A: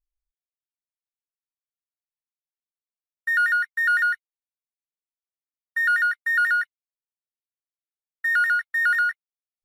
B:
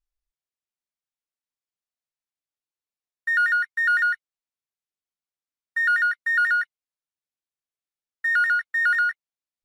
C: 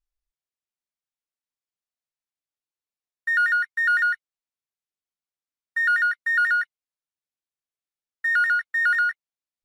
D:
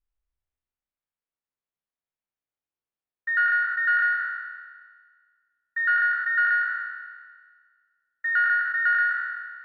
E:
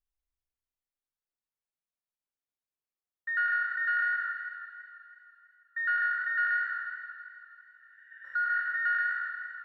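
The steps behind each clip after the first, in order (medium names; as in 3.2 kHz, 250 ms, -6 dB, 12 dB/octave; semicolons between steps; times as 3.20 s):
low-pass 8.8 kHz 12 dB/octave
no audible change
spectral sustain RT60 1.66 s; distance through air 400 m
spectral replace 7.62–8.56 s, 1.5–3.8 kHz both; modulated delay 163 ms, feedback 69%, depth 59 cents, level -13 dB; trim -6.5 dB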